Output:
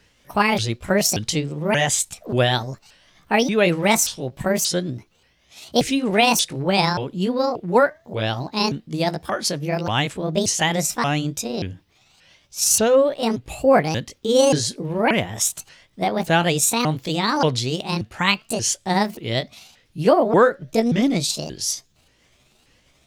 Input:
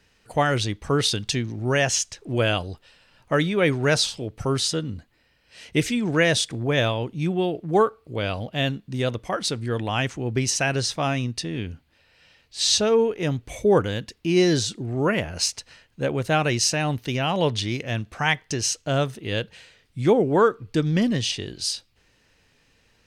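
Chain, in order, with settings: sawtooth pitch modulation +8.5 st, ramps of 581 ms; trim +4 dB

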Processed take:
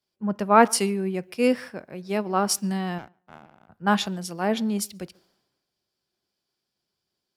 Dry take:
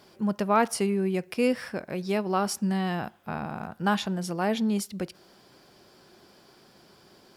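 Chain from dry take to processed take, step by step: 2.98–3.69 s: power-law waveshaper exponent 2; tape echo 142 ms, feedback 30%, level -22.5 dB, low-pass 2.3 kHz; three bands expanded up and down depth 100%

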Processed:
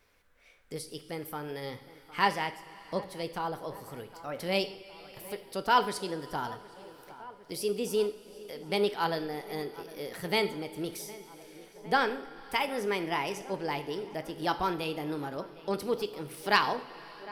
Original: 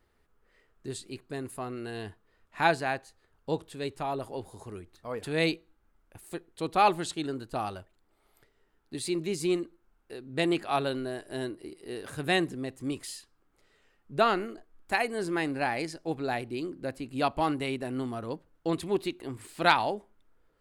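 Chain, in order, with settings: wide varispeed 1.19×; tape echo 760 ms, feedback 81%, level -18 dB, low-pass 1.2 kHz; two-slope reverb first 0.58 s, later 3.3 s, from -16 dB, DRR 9 dB; tape noise reduction on one side only encoder only; trim -2 dB

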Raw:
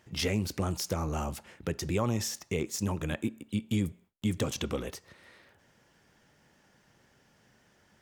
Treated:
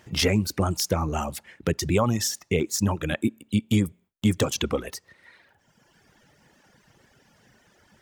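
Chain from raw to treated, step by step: reverb removal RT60 1.5 s; trim +8.5 dB

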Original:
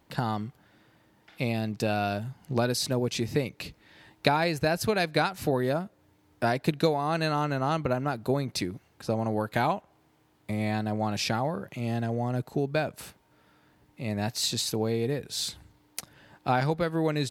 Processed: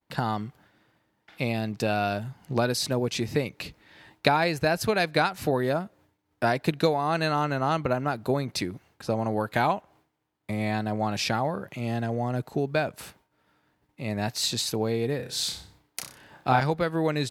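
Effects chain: peaking EQ 1.4 kHz +3 dB 3 oct; 15.16–16.60 s: flutter echo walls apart 5.3 m, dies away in 0.38 s; expander -53 dBFS

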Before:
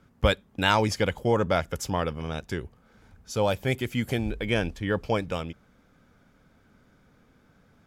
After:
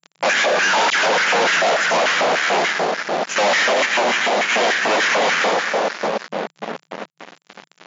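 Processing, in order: square wave that keeps the level; distance through air 67 m; reverberation RT60 3.6 s, pre-delay 91 ms, DRR 1 dB; compression 4:1, threshold -24 dBFS, peak gain reduction 15.5 dB; 0.90–1.56 s: phase dispersion lows, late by 94 ms, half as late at 1.3 kHz; LFO high-pass square 3.4 Hz 680–1700 Hz; fuzz box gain 38 dB, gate -44 dBFS; FFT band-pass 160–7300 Hz; trim -1.5 dB

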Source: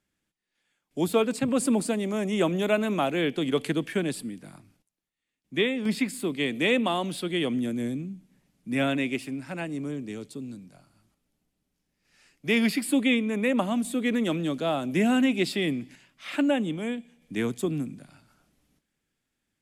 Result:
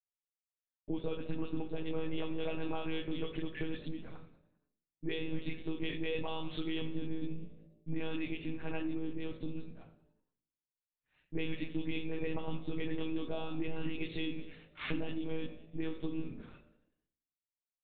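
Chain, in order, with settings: delay that grows with frequency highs late, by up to 108 ms; hum notches 50/100/150/200/250 Hz; expander -53 dBFS; band-stop 540 Hz, Q 12; compression 12:1, threshold -34 dBFS, peak gain reduction 16.5 dB; monotone LPC vocoder at 8 kHz 160 Hz; frequency-shifting echo 104 ms, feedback 59%, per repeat +55 Hz, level -20 dB; reverberation RT60 0.55 s, pre-delay 7 ms, DRR 5 dB; tempo 1.1×; trim -2 dB

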